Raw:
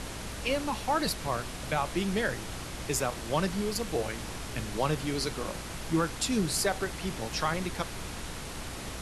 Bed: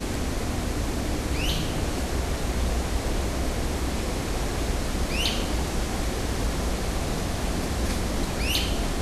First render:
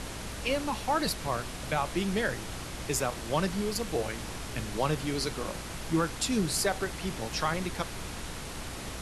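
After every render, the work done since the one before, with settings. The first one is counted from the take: no audible change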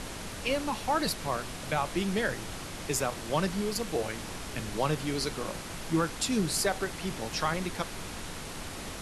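hum notches 60/120 Hz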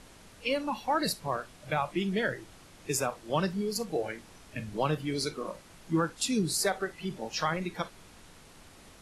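noise print and reduce 14 dB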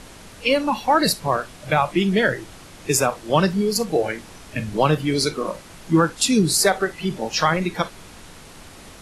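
trim +11 dB

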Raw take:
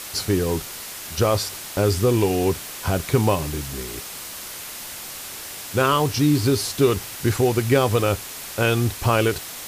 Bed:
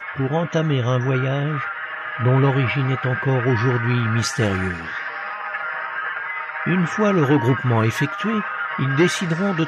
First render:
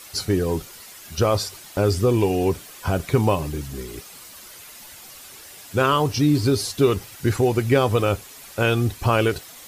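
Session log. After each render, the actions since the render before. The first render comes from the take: noise reduction 10 dB, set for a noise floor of -35 dBFS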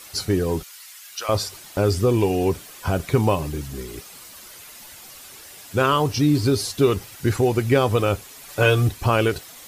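0.63–1.29 s: high-pass 1.4 kHz; 8.48–8.89 s: comb 6.8 ms, depth 84%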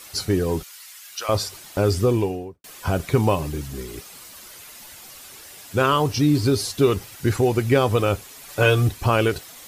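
2.02–2.64 s: studio fade out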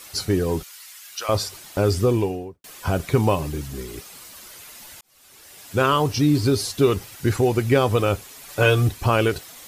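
5.01–5.73 s: fade in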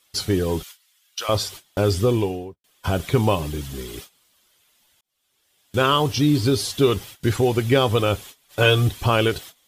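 gate -38 dBFS, range -21 dB; peaking EQ 3.3 kHz +8.5 dB 0.34 oct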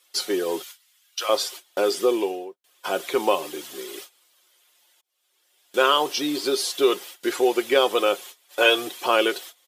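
high-pass 340 Hz 24 dB/octave; comb 5.6 ms, depth 32%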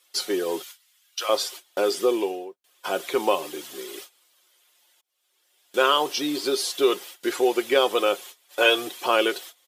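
trim -1 dB

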